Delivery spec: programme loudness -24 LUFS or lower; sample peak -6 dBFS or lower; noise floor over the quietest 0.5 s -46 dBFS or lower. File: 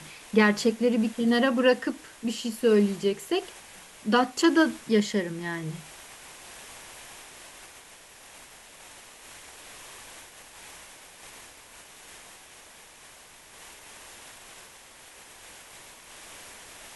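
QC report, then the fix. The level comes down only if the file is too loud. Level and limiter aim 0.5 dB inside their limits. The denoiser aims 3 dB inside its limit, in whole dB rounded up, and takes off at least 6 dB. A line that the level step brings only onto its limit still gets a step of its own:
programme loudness -25.0 LUFS: pass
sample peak -6.5 dBFS: pass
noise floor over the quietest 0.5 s -51 dBFS: pass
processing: none needed

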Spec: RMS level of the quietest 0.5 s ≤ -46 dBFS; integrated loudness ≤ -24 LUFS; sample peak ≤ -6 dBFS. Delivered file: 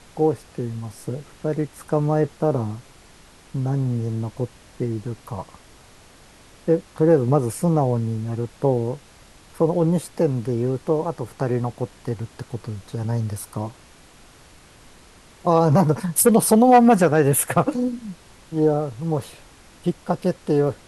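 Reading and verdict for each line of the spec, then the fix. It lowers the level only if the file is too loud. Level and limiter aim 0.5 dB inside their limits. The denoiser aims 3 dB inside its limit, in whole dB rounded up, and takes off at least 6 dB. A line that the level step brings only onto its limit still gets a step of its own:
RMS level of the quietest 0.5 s -49 dBFS: pass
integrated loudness -21.5 LUFS: fail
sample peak -4.5 dBFS: fail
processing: trim -3 dB

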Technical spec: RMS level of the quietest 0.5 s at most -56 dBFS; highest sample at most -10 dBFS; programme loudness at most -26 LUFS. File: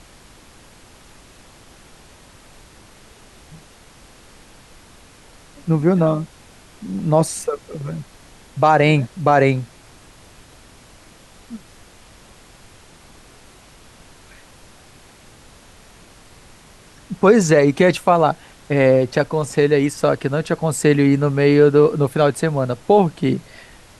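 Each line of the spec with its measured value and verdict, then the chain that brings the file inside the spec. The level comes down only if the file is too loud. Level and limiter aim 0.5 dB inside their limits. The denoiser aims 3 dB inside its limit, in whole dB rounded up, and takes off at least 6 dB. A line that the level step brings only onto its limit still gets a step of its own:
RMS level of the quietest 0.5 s -46 dBFS: fail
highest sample -2.5 dBFS: fail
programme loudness -17.0 LUFS: fail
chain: noise reduction 6 dB, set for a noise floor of -46 dBFS; trim -9.5 dB

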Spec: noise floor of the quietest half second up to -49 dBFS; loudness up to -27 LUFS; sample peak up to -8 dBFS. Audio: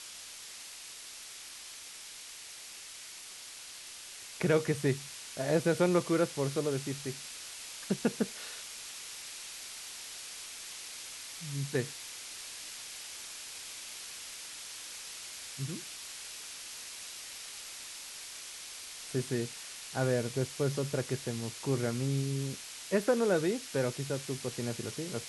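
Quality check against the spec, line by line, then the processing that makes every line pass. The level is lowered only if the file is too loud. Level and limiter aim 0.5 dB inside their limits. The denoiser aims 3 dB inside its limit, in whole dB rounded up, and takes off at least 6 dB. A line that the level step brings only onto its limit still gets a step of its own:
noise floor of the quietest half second -47 dBFS: fail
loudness -36.0 LUFS: pass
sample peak -15.5 dBFS: pass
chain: noise reduction 6 dB, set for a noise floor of -47 dBFS

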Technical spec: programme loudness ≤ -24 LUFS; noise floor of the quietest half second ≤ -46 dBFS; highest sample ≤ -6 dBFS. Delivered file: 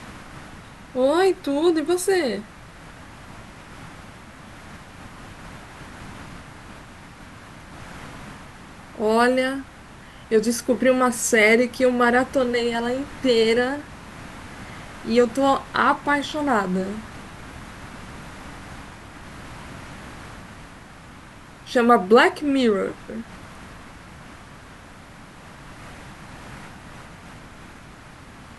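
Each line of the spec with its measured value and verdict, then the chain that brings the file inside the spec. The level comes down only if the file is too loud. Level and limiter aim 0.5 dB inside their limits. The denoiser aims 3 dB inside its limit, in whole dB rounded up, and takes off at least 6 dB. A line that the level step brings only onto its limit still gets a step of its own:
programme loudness -20.5 LUFS: fail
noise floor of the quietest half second -43 dBFS: fail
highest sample -4.0 dBFS: fail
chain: trim -4 dB

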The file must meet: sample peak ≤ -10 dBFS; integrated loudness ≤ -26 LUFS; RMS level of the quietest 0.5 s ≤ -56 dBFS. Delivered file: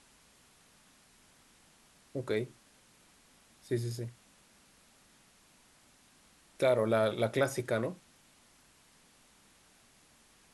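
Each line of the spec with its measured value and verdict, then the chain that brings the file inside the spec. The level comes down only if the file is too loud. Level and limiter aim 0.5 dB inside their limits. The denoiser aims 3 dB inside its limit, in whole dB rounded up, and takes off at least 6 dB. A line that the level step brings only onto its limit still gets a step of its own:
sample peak -16.5 dBFS: pass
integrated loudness -33.0 LUFS: pass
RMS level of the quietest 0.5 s -64 dBFS: pass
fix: none needed

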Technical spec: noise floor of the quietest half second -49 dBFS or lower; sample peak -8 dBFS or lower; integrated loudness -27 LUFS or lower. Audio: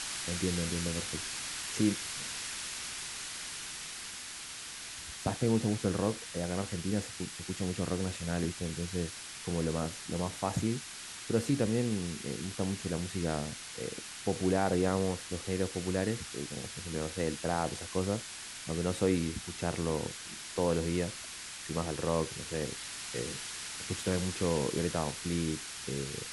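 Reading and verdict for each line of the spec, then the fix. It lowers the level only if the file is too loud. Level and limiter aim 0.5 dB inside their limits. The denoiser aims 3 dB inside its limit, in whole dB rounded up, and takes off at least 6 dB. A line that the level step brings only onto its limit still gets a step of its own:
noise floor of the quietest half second -45 dBFS: fail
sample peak -15.0 dBFS: pass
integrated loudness -34.5 LUFS: pass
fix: noise reduction 7 dB, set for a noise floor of -45 dBFS

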